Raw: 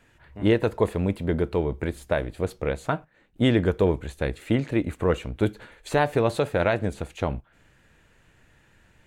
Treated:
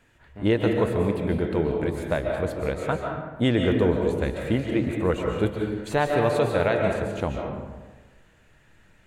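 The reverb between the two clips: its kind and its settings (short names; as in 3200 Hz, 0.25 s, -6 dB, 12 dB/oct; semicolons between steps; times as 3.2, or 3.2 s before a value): digital reverb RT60 1.3 s, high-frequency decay 0.5×, pre-delay 0.1 s, DRR 1.5 dB; gain -1.5 dB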